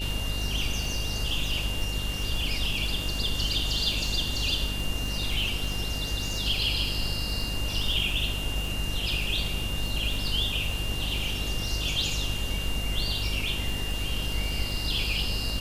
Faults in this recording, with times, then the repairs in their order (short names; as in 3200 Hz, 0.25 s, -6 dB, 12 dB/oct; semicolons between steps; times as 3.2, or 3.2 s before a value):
buzz 50 Hz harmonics 14 -33 dBFS
crackle 55/s -33 dBFS
tone 2800 Hz -34 dBFS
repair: de-click; notch 2800 Hz, Q 30; de-hum 50 Hz, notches 14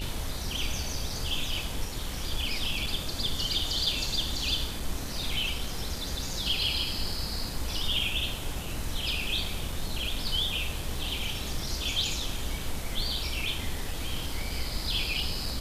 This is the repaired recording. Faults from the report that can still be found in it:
none